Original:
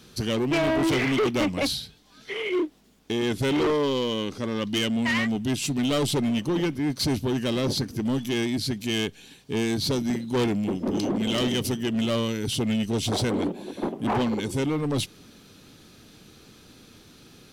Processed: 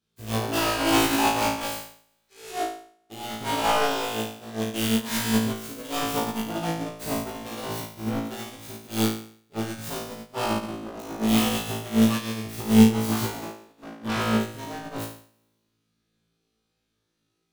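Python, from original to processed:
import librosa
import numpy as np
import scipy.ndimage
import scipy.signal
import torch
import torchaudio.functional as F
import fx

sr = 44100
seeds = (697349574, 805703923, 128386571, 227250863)

p1 = fx.self_delay(x, sr, depth_ms=0.65)
p2 = p1 + fx.room_flutter(p1, sr, wall_m=3.1, rt60_s=1.3, dry=0)
p3 = fx.upward_expand(p2, sr, threshold_db=-33.0, expansion=2.5)
y = p3 * librosa.db_to_amplitude(1.5)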